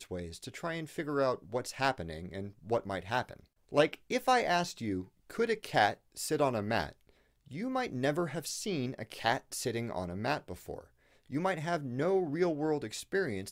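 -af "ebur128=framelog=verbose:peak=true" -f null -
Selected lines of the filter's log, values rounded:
Integrated loudness:
  I:         -33.6 LUFS
  Threshold: -44.0 LUFS
Loudness range:
  LRA:         4.1 LU
  Threshold: -53.9 LUFS
  LRA low:   -35.9 LUFS
  LRA high:  -31.8 LUFS
True peak:
  Peak:      -11.4 dBFS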